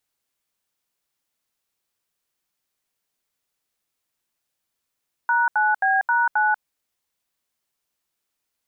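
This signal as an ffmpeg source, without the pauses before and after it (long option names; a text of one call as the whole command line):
ffmpeg -f lavfi -i "aevalsrc='0.112*clip(min(mod(t,0.266),0.19-mod(t,0.266))/0.002,0,1)*(eq(floor(t/0.266),0)*(sin(2*PI*941*mod(t,0.266))+sin(2*PI*1477*mod(t,0.266)))+eq(floor(t/0.266),1)*(sin(2*PI*852*mod(t,0.266))+sin(2*PI*1477*mod(t,0.266)))+eq(floor(t/0.266),2)*(sin(2*PI*770*mod(t,0.266))+sin(2*PI*1633*mod(t,0.266)))+eq(floor(t/0.266),3)*(sin(2*PI*941*mod(t,0.266))+sin(2*PI*1477*mod(t,0.266)))+eq(floor(t/0.266),4)*(sin(2*PI*852*mod(t,0.266))+sin(2*PI*1477*mod(t,0.266))))':duration=1.33:sample_rate=44100" out.wav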